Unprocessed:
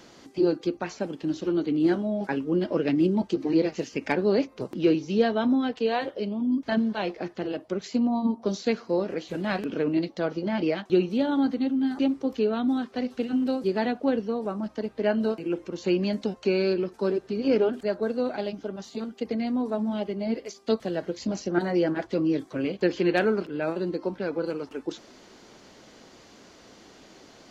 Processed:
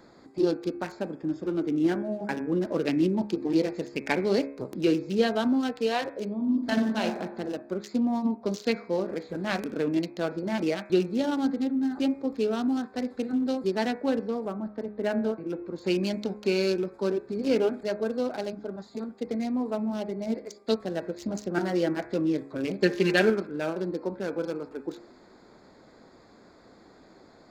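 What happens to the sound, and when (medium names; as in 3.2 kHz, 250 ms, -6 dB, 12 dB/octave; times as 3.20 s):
1.15–2.67 s: Butterworth band-stop 4.1 kHz, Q 3.9
6.35–7.05 s: reverb throw, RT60 1.2 s, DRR 2.5 dB
14.48–15.68 s: distance through air 240 m
22.69–23.30 s: comb 5 ms, depth 82%
whole clip: local Wiener filter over 15 samples; treble shelf 2.7 kHz +10.5 dB; de-hum 69.49 Hz, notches 37; trim -1.5 dB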